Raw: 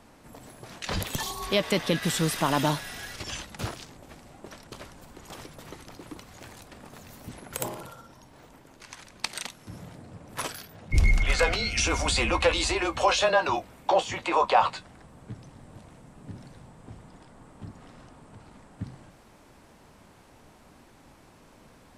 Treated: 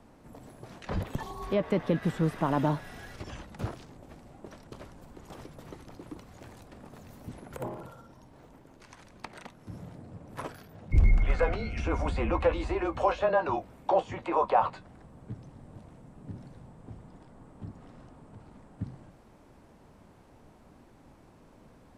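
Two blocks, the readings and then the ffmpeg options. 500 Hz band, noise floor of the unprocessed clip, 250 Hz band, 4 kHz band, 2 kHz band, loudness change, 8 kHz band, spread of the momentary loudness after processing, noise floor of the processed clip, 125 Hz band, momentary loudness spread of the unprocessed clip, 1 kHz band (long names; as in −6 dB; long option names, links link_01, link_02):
−1.5 dB, −55 dBFS, −0.5 dB, −18.0 dB, −10.0 dB, −3.5 dB, below −20 dB, 22 LU, −57 dBFS, 0.0 dB, 22 LU, −3.5 dB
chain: -filter_complex "[0:a]tiltshelf=frequency=1200:gain=5,acrossover=split=760|2300[link_01][link_02][link_03];[link_03]acompressor=threshold=-49dB:ratio=6[link_04];[link_01][link_02][link_04]amix=inputs=3:normalize=0,volume=-5dB"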